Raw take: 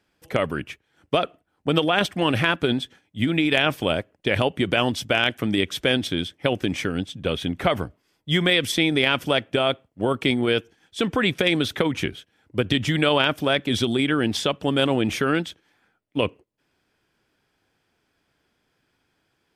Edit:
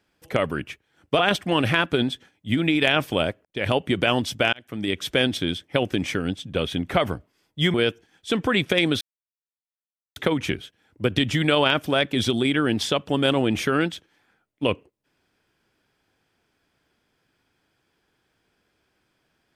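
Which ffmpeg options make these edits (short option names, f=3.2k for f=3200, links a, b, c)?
-filter_complex "[0:a]asplit=6[a][b][c][d][e][f];[a]atrim=end=1.192[g];[b]atrim=start=1.888:end=4.15,asetpts=PTS-STARTPTS,afade=t=out:st=2.258:d=0.004:c=hsin[h];[c]atrim=start=4.15:end=5.23,asetpts=PTS-STARTPTS,afade=t=in:d=0.28,afade=t=out:st=1.076:d=0.004:c=hsin[i];[d]atrim=start=5.23:end=8.442,asetpts=PTS-STARTPTS,afade=t=in:d=0.54[j];[e]atrim=start=10.428:end=11.7,asetpts=PTS-STARTPTS,afade=t=out:st=1.268:d=0.004:c=hsin,apad=pad_dur=1.15[k];[f]atrim=start=11.7,asetpts=PTS-STARTPTS,afade=t=in:d=0.004:c=hsin[l];[h][i][j]concat=n=3:v=0:a=1[m];[g][m]acrossfade=d=0.004:c1=hsin:c2=hsin[n];[k][l]concat=n=2:v=0:a=1[o];[n][o]acrossfade=d=0.004:c1=hsin:c2=hsin"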